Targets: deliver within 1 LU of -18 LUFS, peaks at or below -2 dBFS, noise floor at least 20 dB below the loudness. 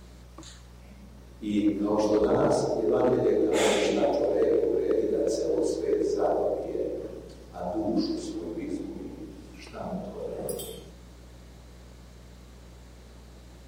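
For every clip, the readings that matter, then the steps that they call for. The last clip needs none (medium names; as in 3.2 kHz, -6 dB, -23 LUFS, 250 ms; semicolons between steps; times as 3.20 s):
clipped samples 0.3%; clipping level -16.5 dBFS; hum 60 Hz; highest harmonic 180 Hz; hum level -46 dBFS; loudness -27.0 LUFS; peak level -16.5 dBFS; loudness target -18.0 LUFS
-> clip repair -16.5 dBFS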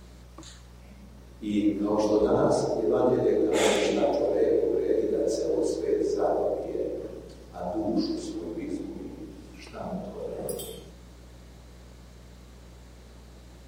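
clipped samples 0.0%; hum 60 Hz; highest harmonic 180 Hz; hum level -46 dBFS
-> de-hum 60 Hz, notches 3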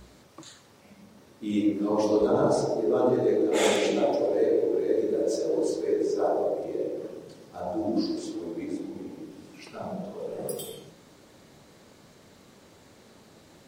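hum not found; loudness -27.0 LUFS; peak level -9.5 dBFS; loudness target -18.0 LUFS
-> trim +9 dB; peak limiter -2 dBFS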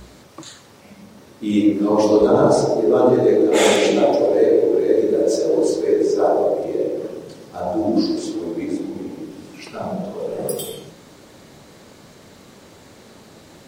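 loudness -18.0 LUFS; peak level -2.0 dBFS; noise floor -46 dBFS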